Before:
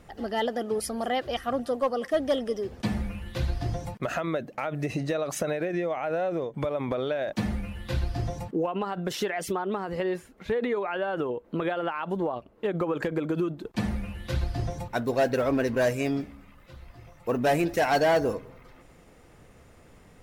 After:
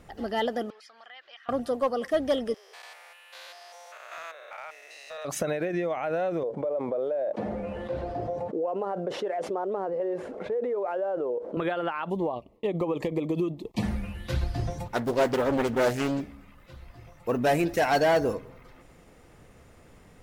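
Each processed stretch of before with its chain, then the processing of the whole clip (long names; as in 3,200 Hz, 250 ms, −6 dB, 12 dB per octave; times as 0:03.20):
0:00.70–0:01.49: Chebyshev high-pass filter 1,800 Hz + high-frequency loss of the air 190 metres + downward compressor 2 to 1, threshold −51 dBFS
0:02.54–0:05.25: spectrum averaged block by block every 200 ms + Bessel high-pass filter 990 Hz, order 8 + gain into a clipping stage and back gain 32 dB
0:06.43–0:11.57: variable-slope delta modulation 64 kbit/s + resonant band-pass 540 Hz, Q 2.6 + envelope flattener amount 70%
0:12.10–0:13.83: noise gate with hold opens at −45 dBFS, closes at −54 dBFS + Butterworth band-reject 1,500 Hz, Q 1.8
0:14.86–0:16.21: high-shelf EQ 5,200 Hz +3.5 dB + highs frequency-modulated by the lows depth 0.7 ms
whole clip: no processing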